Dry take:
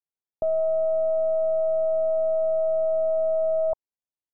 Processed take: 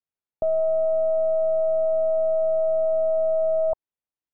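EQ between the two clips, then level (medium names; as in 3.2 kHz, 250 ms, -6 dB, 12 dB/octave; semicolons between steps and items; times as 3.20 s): distance through air 340 m; +2.5 dB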